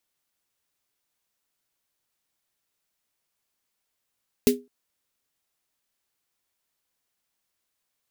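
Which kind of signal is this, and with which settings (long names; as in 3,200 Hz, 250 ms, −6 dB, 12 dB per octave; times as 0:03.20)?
synth snare length 0.21 s, tones 250 Hz, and 410 Hz, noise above 2,000 Hz, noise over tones −7 dB, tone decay 0.25 s, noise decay 0.14 s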